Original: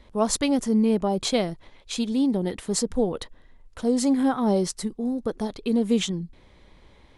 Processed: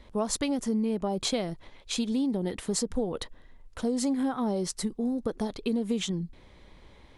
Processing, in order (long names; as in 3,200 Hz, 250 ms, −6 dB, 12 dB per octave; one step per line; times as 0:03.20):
downward compressor, threshold −25 dBFS, peak gain reduction 8.5 dB